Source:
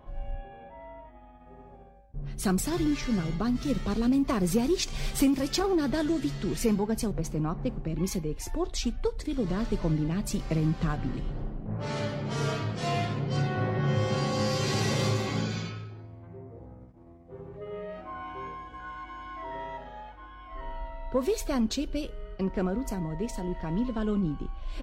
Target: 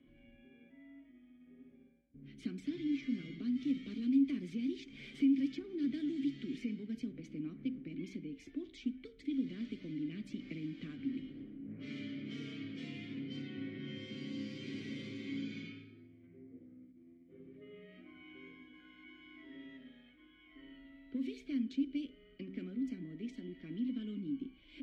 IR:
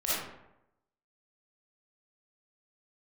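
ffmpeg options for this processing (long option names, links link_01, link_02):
-filter_complex "[0:a]acrossover=split=260|1900|7000[link_01][link_02][link_03][link_04];[link_01]acompressor=threshold=-33dB:ratio=4[link_05];[link_02]acompressor=threshold=-37dB:ratio=4[link_06];[link_03]acompressor=threshold=-45dB:ratio=4[link_07];[link_04]acompressor=threshold=-54dB:ratio=4[link_08];[link_05][link_06][link_07][link_08]amix=inputs=4:normalize=0,asplit=3[link_09][link_10][link_11];[link_09]bandpass=frequency=270:width_type=q:width=8,volume=0dB[link_12];[link_10]bandpass=frequency=2290:width_type=q:width=8,volume=-6dB[link_13];[link_11]bandpass=frequency=3010:width_type=q:width=8,volume=-9dB[link_14];[link_12][link_13][link_14]amix=inputs=3:normalize=0,bandreject=frequency=64.13:width_type=h:width=4,bandreject=frequency=128.26:width_type=h:width=4,bandreject=frequency=192.39:width_type=h:width=4,bandreject=frequency=256.52:width_type=h:width=4,bandreject=frequency=320.65:width_type=h:width=4,bandreject=frequency=384.78:width_type=h:width=4,bandreject=frequency=448.91:width_type=h:width=4,bandreject=frequency=513.04:width_type=h:width=4,bandreject=frequency=577.17:width_type=h:width=4,bandreject=frequency=641.3:width_type=h:width=4,bandreject=frequency=705.43:width_type=h:width=4,bandreject=frequency=769.56:width_type=h:width=4,bandreject=frequency=833.69:width_type=h:width=4,bandreject=frequency=897.82:width_type=h:width=4,bandreject=frequency=961.95:width_type=h:width=4,bandreject=frequency=1026.08:width_type=h:width=4,bandreject=frequency=1090.21:width_type=h:width=4,bandreject=frequency=1154.34:width_type=h:width=4,bandreject=frequency=1218.47:width_type=h:width=4,bandreject=frequency=1282.6:width_type=h:width=4,bandreject=frequency=1346.73:width_type=h:width=4,bandreject=frequency=1410.86:width_type=h:width=4,bandreject=frequency=1474.99:width_type=h:width=4,bandreject=frequency=1539.12:width_type=h:width=4,bandreject=frequency=1603.25:width_type=h:width=4,bandreject=frequency=1667.38:width_type=h:width=4,bandreject=frequency=1731.51:width_type=h:width=4,bandreject=frequency=1795.64:width_type=h:width=4,bandreject=frequency=1859.77:width_type=h:width=4,bandreject=frequency=1923.9:width_type=h:width=4,volume=4dB"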